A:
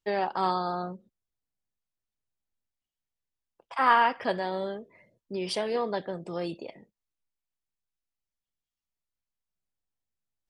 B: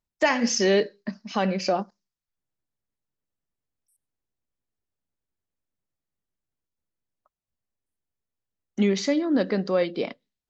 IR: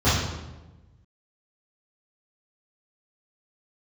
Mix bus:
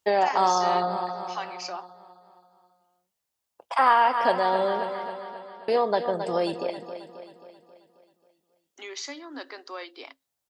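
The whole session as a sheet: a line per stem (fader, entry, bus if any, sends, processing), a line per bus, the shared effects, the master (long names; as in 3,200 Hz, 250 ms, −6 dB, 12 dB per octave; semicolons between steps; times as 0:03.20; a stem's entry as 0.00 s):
+0.5 dB, 0.00 s, muted 0:05.09–0:05.68, no send, echo send −11.5 dB, high-pass filter 51 Hz; parametric band 720 Hz +11 dB 1.9 octaves
−6.5 dB, 0.00 s, no send, no echo send, Chebyshev high-pass with heavy ripple 260 Hz, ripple 6 dB; low shelf with overshoot 640 Hz −7 dB, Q 1.5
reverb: not used
echo: repeating echo 268 ms, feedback 54%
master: high-shelf EQ 3,200 Hz +12 dB; downward compressor 2 to 1, threshold −21 dBFS, peak gain reduction 8.5 dB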